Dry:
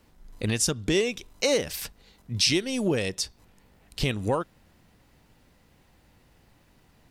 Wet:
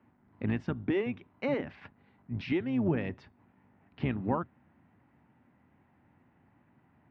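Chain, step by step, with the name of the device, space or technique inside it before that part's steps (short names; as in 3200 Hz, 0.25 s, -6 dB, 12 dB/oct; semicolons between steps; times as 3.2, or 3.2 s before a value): sub-octave bass pedal (octaver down 1 oct, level -4 dB; speaker cabinet 89–2100 Hz, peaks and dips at 250 Hz +6 dB, 490 Hz -7 dB, 870 Hz +3 dB); gain -4.5 dB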